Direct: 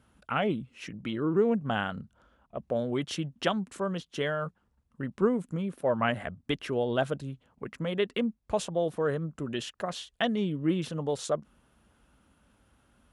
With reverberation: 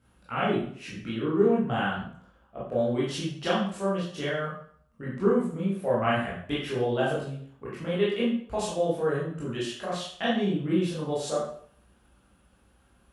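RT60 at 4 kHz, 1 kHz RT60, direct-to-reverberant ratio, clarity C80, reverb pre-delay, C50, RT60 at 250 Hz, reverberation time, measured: 0.50 s, 0.55 s, -8.0 dB, 6.0 dB, 16 ms, 1.5 dB, 0.55 s, 0.55 s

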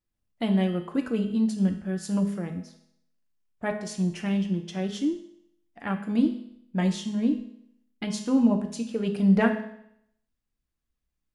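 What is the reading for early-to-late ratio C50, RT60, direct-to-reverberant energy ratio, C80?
9.0 dB, 0.70 s, 4.0 dB, 11.5 dB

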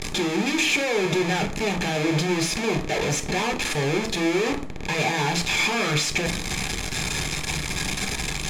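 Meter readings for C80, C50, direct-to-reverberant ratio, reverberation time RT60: 18.0 dB, 13.5 dB, 6.0 dB, 0.45 s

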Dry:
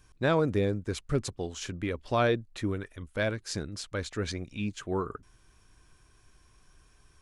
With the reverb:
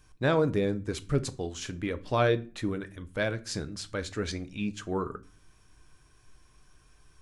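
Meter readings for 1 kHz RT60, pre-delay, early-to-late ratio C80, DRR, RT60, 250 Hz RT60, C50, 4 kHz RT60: 0.35 s, 7 ms, 25.5 dB, 11.0 dB, 0.40 s, 0.60 s, 19.0 dB, 0.30 s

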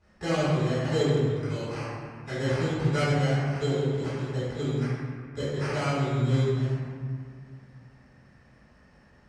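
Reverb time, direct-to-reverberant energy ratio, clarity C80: 1.9 s, -14.5 dB, -1.0 dB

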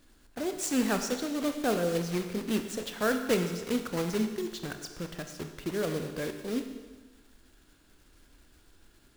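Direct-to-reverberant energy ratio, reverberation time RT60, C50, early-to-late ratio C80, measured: 6.0 dB, 1.3 s, 7.5 dB, 9.0 dB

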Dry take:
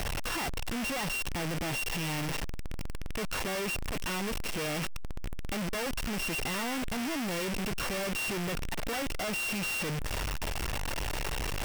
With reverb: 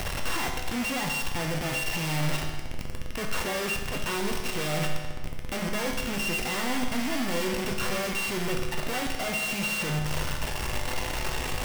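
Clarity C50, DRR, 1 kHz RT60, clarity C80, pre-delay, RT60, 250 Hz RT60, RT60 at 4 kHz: 4.0 dB, 1.0 dB, 1.4 s, 5.5 dB, 8 ms, 1.4 s, 1.4 s, 1.3 s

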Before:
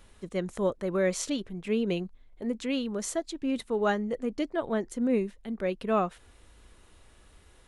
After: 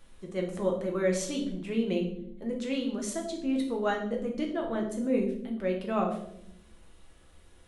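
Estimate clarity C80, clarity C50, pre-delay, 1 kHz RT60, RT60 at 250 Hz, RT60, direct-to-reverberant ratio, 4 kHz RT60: 11.0 dB, 7.5 dB, 6 ms, 0.60 s, 1.3 s, 0.75 s, 0.5 dB, 0.55 s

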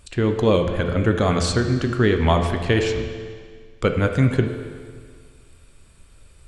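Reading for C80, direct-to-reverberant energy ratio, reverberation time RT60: 8.0 dB, 5.0 dB, 1.8 s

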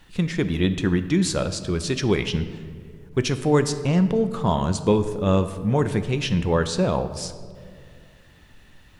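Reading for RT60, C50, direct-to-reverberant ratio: 2.1 s, 11.5 dB, 9.5 dB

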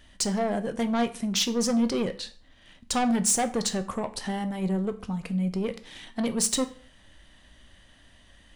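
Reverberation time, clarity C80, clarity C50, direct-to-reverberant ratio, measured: 0.45 s, 20.0 dB, 16.0 dB, 9.5 dB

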